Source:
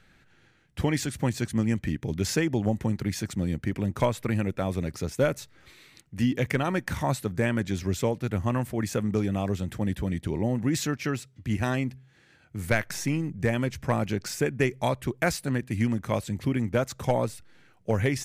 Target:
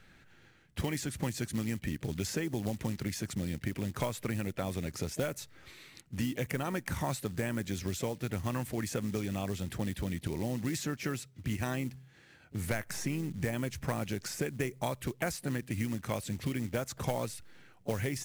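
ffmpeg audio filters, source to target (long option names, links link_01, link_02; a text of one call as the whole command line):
ffmpeg -i in.wav -filter_complex "[0:a]acrusher=bits=6:mode=log:mix=0:aa=0.000001,acrossover=split=1800|6100[link_01][link_02][link_03];[link_01]acompressor=threshold=-32dB:ratio=4[link_04];[link_02]acompressor=threshold=-45dB:ratio=4[link_05];[link_03]acompressor=threshold=-42dB:ratio=4[link_06];[link_04][link_05][link_06]amix=inputs=3:normalize=0,asplit=2[link_07][link_08];[link_08]asetrate=55563,aresample=44100,atempo=0.793701,volume=-17dB[link_09];[link_07][link_09]amix=inputs=2:normalize=0" out.wav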